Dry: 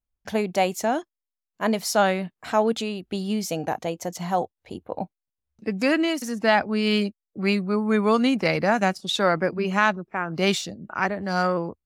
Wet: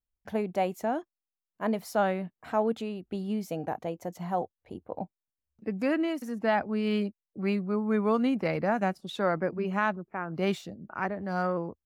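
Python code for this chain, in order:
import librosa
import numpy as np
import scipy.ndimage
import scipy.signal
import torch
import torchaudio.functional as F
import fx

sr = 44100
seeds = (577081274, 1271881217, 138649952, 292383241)

y = fx.peak_eq(x, sr, hz=5900.0, db=-13.0, octaves=2.4)
y = y * 10.0 ** (-5.0 / 20.0)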